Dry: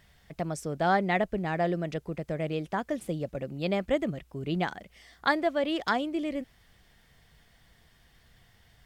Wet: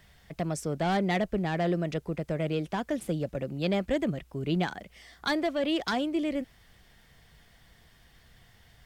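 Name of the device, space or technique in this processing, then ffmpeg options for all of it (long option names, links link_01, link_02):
one-band saturation: -filter_complex "[0:a]acrossover=split=380|2600[link_01][link_02][link_03];[link_02]asoftclip=type=tanh:threshold=-30dB[link_04];[link_01][link_04][link_03]amix=inputs=3:normalize=0,volume=2.5dB"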